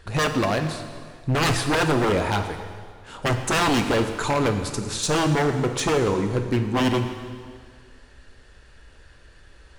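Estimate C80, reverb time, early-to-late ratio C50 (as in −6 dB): 9.0 dB, 1.9 s, 7.5 dB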